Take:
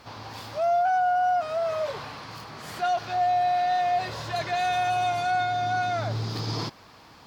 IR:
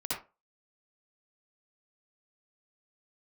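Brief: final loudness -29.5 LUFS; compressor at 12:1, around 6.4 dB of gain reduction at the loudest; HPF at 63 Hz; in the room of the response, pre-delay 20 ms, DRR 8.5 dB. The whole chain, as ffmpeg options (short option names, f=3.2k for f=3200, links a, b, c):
-filter_complex "[0:a]highpass=63,acompressor=threshold=-27dB:ratio=12,asplit=2[a][b];[1:a]atrim=start_sample=2205,adelay=20[c];[b][c]afir=irnorm=-1:irlink=0,volume=-13dB[d];[a][d]amix=inputs=2:normalize=0,volume=1.5dB"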